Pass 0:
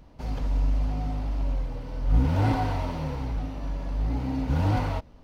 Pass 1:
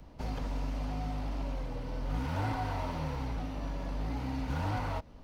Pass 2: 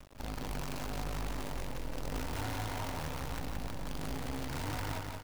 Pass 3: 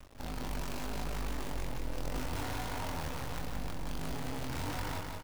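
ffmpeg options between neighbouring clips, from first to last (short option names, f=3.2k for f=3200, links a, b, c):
-filter_complex "[0:a]acrossover=split=140|850|1900|4200[a][b][c][d][e];[a]acompressor=threshold=-36dB:ratio=4[f];[b]acompressor=threshold=-39dB:ratio=4[g];[c]acompressor=threshold=-38dB:ratio=4[h];[d]acompressor=threshold=-54dB:ratio=4[i];[e]acompressor=threshold=-57dB:ratio=4[j];[f][g][h][i][j]amix=inputs=5:normalize=0"
-filter_complex "[0:a]acrusher=bits=6:dc=4:mix=0:aa=0.000001,alimiter=level_in=7dB:limit=-24dB:level=0:latency=1:release=23,volume=-7dB,asplit=2[a][b];[b]aecho=0:1:174|348|522|696|870|1044|1218:0.631|0.341|0.184|0.0994|0.0537|0.029|0.0156[c];[a][c]amix=inputs=2:normalize=0"
-filter_complex "[0:a]asplit=2[a][b];[b]adelay=24,volume=-4.5dB[c];[a][c]amix=inputs=2:normalize=0,volume=-1dB"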